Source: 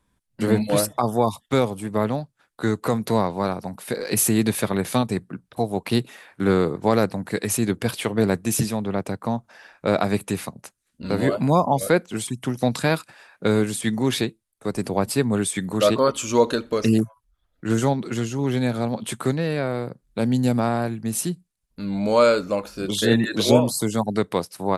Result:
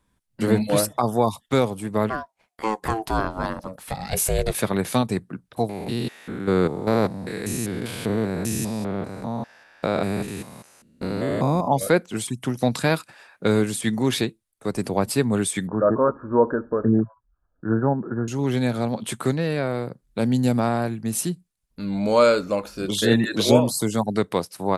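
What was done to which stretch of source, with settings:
2.09–4.53 s: ring modulator 910 Hz -> 240 Hz
5.69–11.68 s: spectrogram pixelated in time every 200 ms
15.67–18.28 s: Chebyshev low-pass 1.7 kHz, order 8

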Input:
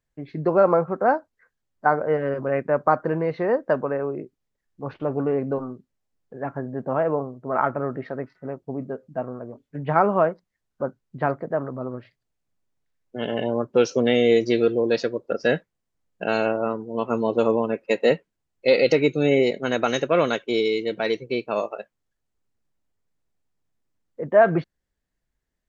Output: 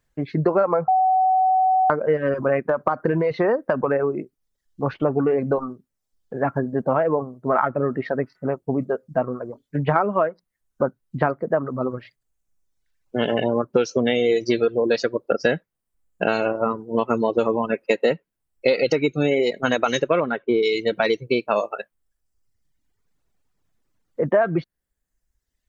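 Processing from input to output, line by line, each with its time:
0.88–1.90 s: bleep 752 Hz -16.5 dBFS
2.61–3.96 s: compression, threshold -20 dBFS
20.20–20.63 s: low-pass 1.5 kHz
whole clip: peaking EQ 1.3 kHz +2 dB; reverb removal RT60 1.1 s; compression, threshold -25 dBFS; trim +9 dB

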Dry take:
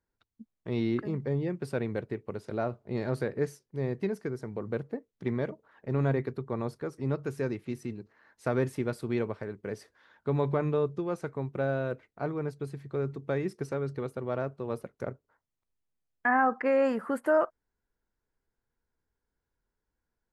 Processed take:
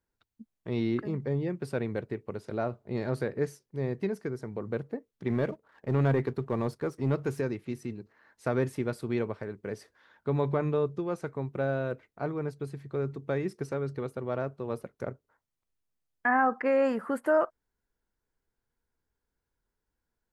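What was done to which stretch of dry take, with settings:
5.30–7.41 s: waveshaping leveller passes 1

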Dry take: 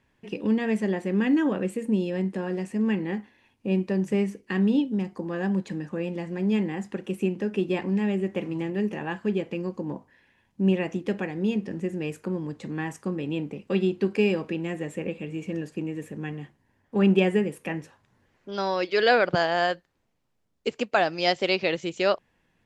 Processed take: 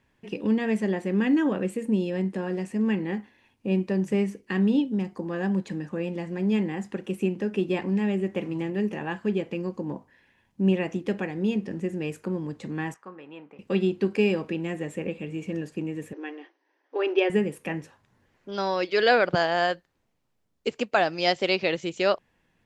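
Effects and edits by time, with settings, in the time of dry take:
12.94–13.59 s: band-pass filter 1.2 kHz, Q 1.6
16.13–17.30 s: brick-wall FIR band-pass 280–6300 Hz

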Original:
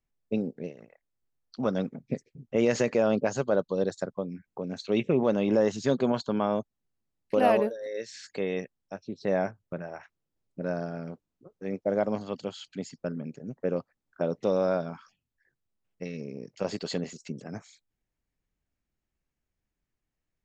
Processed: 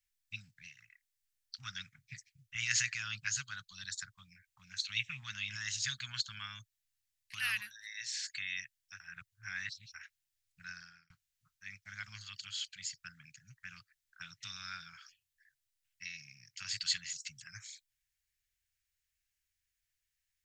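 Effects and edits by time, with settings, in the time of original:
9.00–9.94 s: reverse
10.68–11.10 s: fade out
whole clip: dynamic bell 900 Hz, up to -4 dB, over -38 dBFS, Q 1.3; Chebyshev band-stop 110–1600 Hz, order 3; tilt shelf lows -8 dB, about 1.3 kHz

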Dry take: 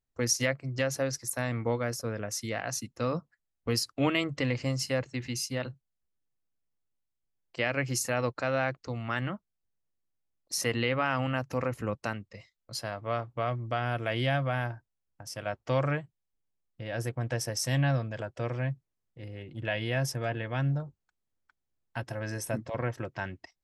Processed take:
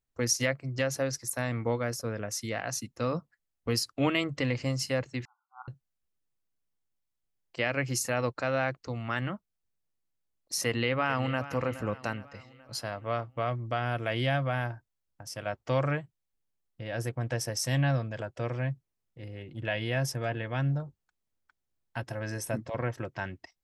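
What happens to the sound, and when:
5.25–5.68 s: brick-wall FIR band-pass 720–1500 Hz
10.67–11.44 s: echo throw 420 ms, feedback 50%, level -14 dB

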